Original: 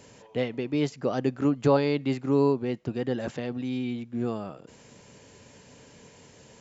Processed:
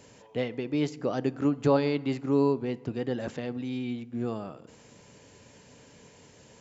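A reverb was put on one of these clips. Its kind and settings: FDN reverb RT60 1.3 s, high-frequency decay 0.45×, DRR 17.5 dB; trim -2 dB

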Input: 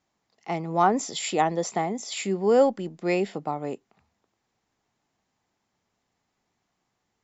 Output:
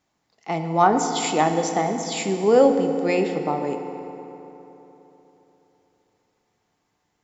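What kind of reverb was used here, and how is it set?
FDN reverb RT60 3.6 s, high-frequency decay 0.6×, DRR 5.5 dB; trim +3 dB

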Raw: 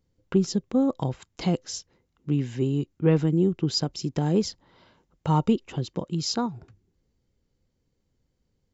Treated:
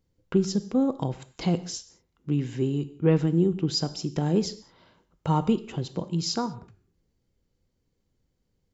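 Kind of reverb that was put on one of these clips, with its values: gated-style reverb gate 230 ms falling, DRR 11.5 dB; trim -1 dB

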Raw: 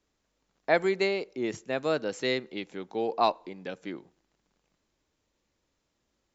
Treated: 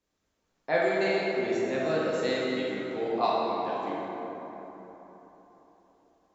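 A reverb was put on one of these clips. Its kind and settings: plate-style reverb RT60 4 s, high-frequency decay 0.45×, DRR -7 dB; trim -6.5 dB

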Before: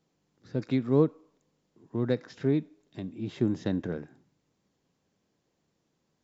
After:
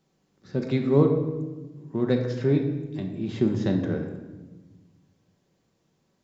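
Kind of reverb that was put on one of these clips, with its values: simulated room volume 830 m³, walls mixed, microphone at 1.1 m; trim +3 dB

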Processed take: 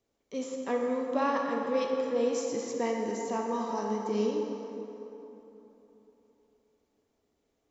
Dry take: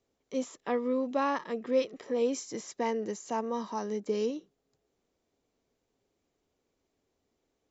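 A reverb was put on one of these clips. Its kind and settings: plate-style reverb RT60 3.5 s, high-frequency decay 0.55×, DRR 0 dB; trim -1.5 dB

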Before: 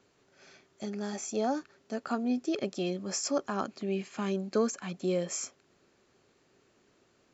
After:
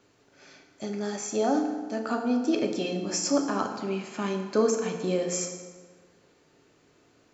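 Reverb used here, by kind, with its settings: FDN reverb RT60 1.5 s, low-frequency decay 1×, high-frequency decay 0.65×, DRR 2.5 dB; trim +3 dB

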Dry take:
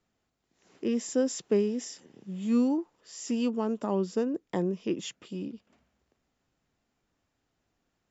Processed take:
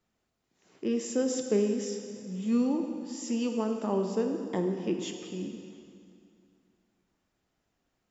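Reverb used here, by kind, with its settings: plate-style reverb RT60 2.4 s, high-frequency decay 0.9×, DRR 4 dB; trim -1.5 dB

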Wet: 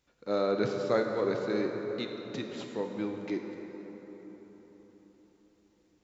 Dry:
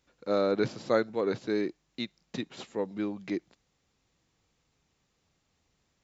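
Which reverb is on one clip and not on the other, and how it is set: plate-style reverb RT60 4.7 s, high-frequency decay 0.5×, DRR 2.5 dB; trim -2.5 dB

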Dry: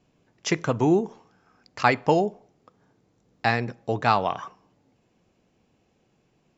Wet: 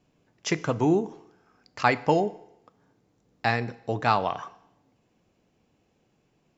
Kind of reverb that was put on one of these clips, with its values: FDN reverb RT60 0.86 s, low-frequency decay 0.85×, high-frequency decay 1×, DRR 16 dB; trim -2 dB

